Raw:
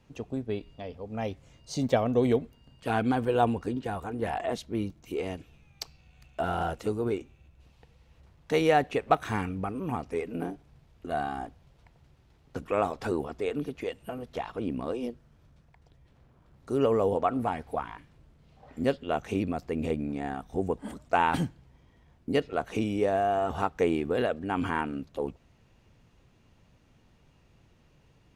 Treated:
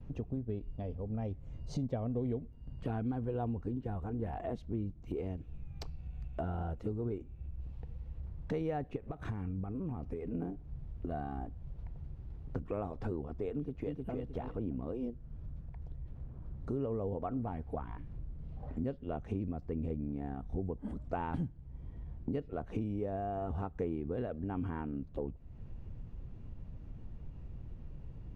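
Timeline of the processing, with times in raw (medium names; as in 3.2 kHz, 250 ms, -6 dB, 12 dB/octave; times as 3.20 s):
8.96–10.34 s: compression 10:1, threshold -32 dBFS
13.55–14.17 s: echo throw 310 ms, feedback 25%, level -4 dB
whole clip: gate with hold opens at -57 dBFS; tilt EQ -4.5 dB/octave; compression 3:1, threshold -39 dBFS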